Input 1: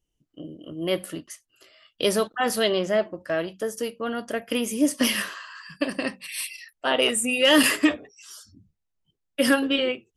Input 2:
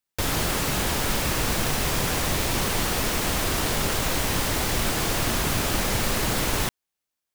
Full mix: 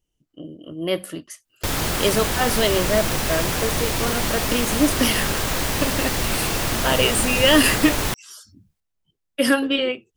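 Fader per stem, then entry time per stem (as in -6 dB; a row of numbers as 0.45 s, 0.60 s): +2.0 dB, +1.5 dB; 0.00 s, 1.45 s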